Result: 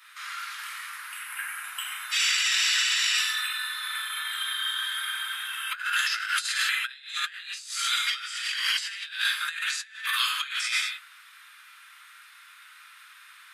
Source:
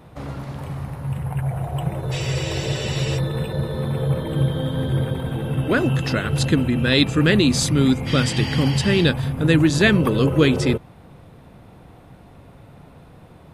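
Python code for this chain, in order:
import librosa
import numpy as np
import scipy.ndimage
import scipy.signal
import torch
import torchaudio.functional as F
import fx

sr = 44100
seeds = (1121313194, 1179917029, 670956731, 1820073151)

y = scipy.signal.sosfilt(scipy.signal.butter(8, 1300.0, 'highpass', fs=sr, output='sos'), x)
y = fx.rev_gated(y, sr, seeds[0], gate_ms=280, shape='falling', drr_db=-4.0)
y = fx.over_compress(y, sr, threshold_db=-28.0, ratio=-0.5)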